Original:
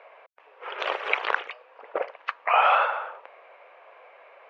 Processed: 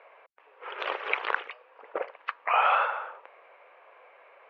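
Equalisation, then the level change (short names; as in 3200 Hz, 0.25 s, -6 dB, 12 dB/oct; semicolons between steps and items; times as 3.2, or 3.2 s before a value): air absorption 150 m; bell 660 Hz -4 dB 0.62 oct; -1.5 dB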